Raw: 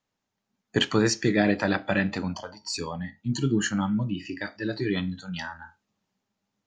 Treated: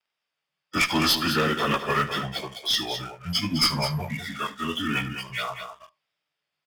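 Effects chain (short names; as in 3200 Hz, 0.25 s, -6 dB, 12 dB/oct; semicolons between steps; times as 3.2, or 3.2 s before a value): pitch shift by moving bins -5.5 st; low-pass opened by the level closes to 2700 Hz, open at -21.5 dBFS; RIAA curve recording; sample leveller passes 2; high shelf 4200 Hz +8.5 dB; notch 4100 Hz, Q 5.9; one-sided clip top -18 dBFS; vibrato 1.5 Hz 46 cents; tapped delay 75/207 ms -17.5/-9.5 dB; mismatched tape noise reduction encoder only; gain -1.5 dB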